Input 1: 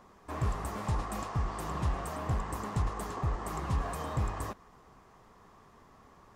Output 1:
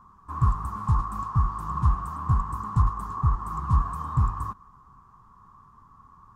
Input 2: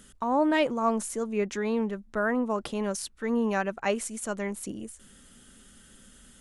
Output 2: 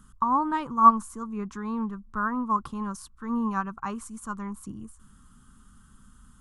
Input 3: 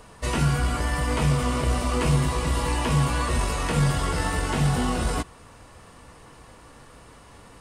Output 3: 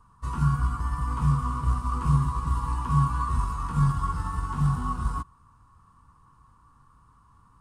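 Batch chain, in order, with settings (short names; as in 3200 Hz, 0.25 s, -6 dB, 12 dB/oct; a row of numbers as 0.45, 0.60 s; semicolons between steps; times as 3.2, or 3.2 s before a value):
EQ curve 130 Hz 0 dB, 240 Hz -7 dB, 620 Hz -24 dB, 1100 Hz +5 dB, 2000 Hz -20 dB, 8800 Hz -13 dB; upward expander 1.5:1, over -36 dBFS; match loudness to -27 LUFS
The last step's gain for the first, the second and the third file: +10.5, +12.0, +1.5 dB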